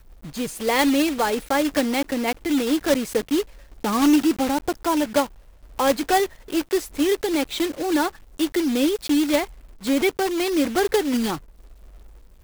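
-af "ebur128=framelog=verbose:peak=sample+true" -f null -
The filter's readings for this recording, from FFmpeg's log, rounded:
Integrated loudness:
  I:         -22.3 LUFS
  Threshold: -32.8 LUFS
Loudness range:
  LRA:         1.3 LU
  Threshold: -42.6 LUFS
  LRA low:   -23.2 LUFS
  LRA high:  -21.9 LUFS
Sample peak:
  Peak:       -6.7 dBFS
True peak:
  Peak:       -5.8 dBFS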